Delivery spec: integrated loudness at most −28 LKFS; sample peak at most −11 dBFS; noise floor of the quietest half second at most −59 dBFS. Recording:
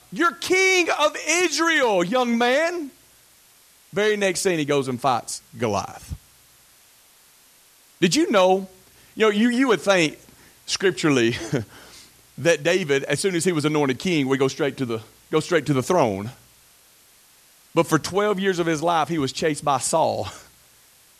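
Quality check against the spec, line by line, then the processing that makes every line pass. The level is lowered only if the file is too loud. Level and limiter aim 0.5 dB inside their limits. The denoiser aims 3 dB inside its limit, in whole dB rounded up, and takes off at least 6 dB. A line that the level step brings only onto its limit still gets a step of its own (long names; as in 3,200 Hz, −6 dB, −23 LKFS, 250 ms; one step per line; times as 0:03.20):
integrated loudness −21.0 LKFS: out of spec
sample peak −4.0 dBFS: out of spec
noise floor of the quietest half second −54 dBFS: out of spec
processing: level −7.5 dB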